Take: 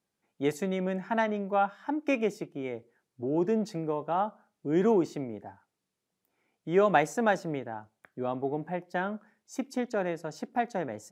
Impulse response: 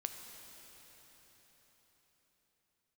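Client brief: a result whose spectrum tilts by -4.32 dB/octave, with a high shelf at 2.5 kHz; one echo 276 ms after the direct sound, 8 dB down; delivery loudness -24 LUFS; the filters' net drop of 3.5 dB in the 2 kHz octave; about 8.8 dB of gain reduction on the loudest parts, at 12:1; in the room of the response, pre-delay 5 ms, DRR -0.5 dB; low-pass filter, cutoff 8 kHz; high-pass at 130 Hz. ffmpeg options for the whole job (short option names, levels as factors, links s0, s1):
-filter_complex "[0:a]highpass=130,lowpass=8000,equalizer=f=2000:t=o:g=-3,highshelf=f=2500:g=-3.5,acompressor=threshold=0.0447:ratio=12,aecho=1:1:276:0.398,asplit=2[s0][s1];[1:a]atrim=start_sample=2205,adelay=5[s2];[s1][s2]afir=irnorm=-1:irlink=0,volume=1.19[s3];[s0][s3]amix=inputs=2:normalize=0,volume=2.24"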